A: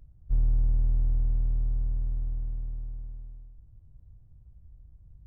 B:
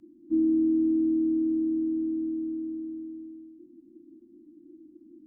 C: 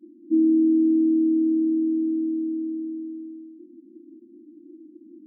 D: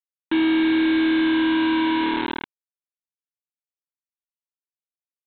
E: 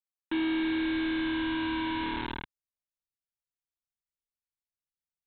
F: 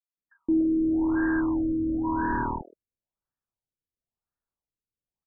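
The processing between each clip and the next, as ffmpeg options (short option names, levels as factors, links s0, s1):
-af "afreqshift=-360,volume=0.841"
-af "afftfilt=real='re*between(b*sr/4096,190,390)':imag='im*between(b*sr/4096,190,390)':win_size=4096:overlap=0.75,volume=1.78"
-af "equalizer=f=210:w=4.8:g=-12,aresample=8000,acrusher=bits=3:mix=0:aa=0.000001,aresample=44100"
-af "asubboost=boost=9.5:cutoff=120,volume=0.376"
-filter_complex "[0:a]acrossover=split=500|3300[s0][s1][s2];[s0]adelay=170[s3];[s1]adelay=290[s4];[s3][s4][s2]amix=inputs=3:normalize=0,afftfilt=real='re*lt(b*sr/1024,530*pow(1900/530,0.5+0.5*sin(2*PI*0.97*pts/sr)))':imag='im*lt(b*sr/1024,530*pow(1900/530,0.5+0.5*sin(2*PI*0.97*pts/sr)))':win_size=1024:overlap=0.75,volume=2.66"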